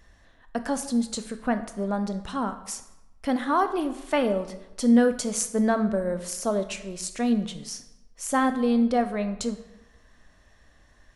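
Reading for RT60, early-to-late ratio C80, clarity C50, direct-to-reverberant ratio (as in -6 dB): 1.0 s, 14.0 dB, 11.5 dB, 9.0 dB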